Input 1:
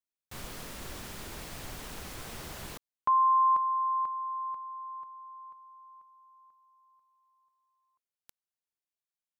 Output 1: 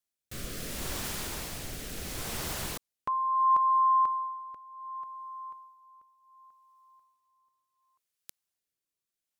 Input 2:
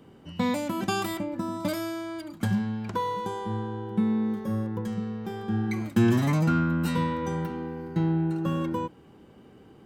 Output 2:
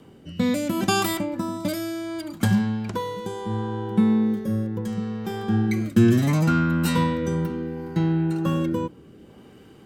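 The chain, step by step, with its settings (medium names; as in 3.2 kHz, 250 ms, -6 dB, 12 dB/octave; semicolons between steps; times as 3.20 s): treble shelf 4.1 kHz +5.5 dB; rotary cabinet horn 0.7 Hz; trim +6 dB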